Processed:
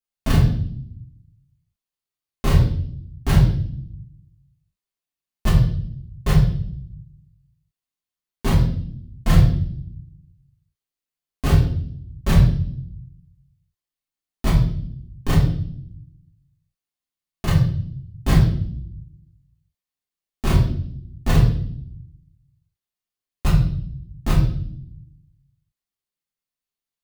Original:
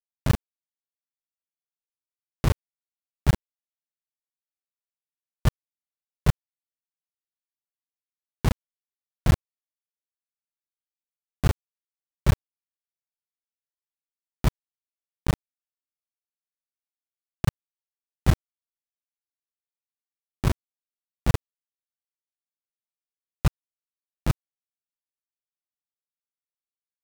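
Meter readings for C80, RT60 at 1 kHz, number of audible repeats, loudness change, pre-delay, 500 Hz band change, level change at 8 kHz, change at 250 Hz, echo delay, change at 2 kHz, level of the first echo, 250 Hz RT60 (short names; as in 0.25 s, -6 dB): 8.5 dB, 0.50 s, none, +6.5 dB, 3 ms, +6.0 dB, +4.5 dB, +9.0 dB, none, +5.0 dB, none, 1.2 s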